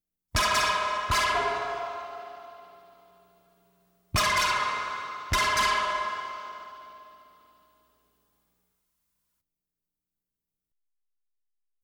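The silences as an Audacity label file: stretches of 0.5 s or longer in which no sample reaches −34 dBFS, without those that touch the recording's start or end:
2.350000	4.150000	silence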